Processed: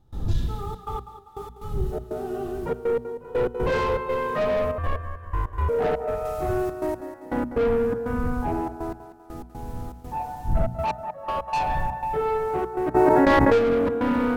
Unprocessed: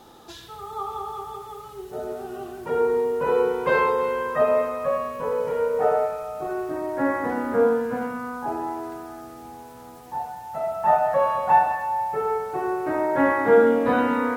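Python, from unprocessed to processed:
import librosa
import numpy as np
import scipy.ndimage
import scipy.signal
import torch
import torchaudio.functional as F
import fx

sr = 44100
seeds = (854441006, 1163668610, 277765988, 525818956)

y = fx.dmg_wind(x, sr, seeds[0], corner_hz=92.0, level_db=-38.0)
y = fx.high_shelf(y, sr, hz=2000.0, db=8.5, at=(6.25, 6.97))
y = fx.add_hum(y, sr, base_hz=60, snr_db=24)
y = fx.step_gate(y, sr, bpm=121, pattern='.xxxxx.x...x.xxx', floor_db=-24.0, edge_ms=4.5)
y = fx.hum_notches(y, sr, base_hz=60, count=4)
y = fx.echo_thinned(y, sr, ms=196, feedback_pct=48, hz=190.0, wet_db=-12.5)
y = 10.0 ** (-22.5 / 20.0) * np.tanh(y / 10.0 ** (-22.5 / 20.0))
y = fx.ring_mod(y, sr, carrier_hz=540.0, at=(4.78, 5.69))
y = fx.low_shelf(y, sr, hz=400.0, db=11.0)
y = fx.env_flatten(y, sr, amount_pct=100, at=(12.94, 13.57), fade=0.02)
y = y * 10.0 ** (-1.0 / 20.0)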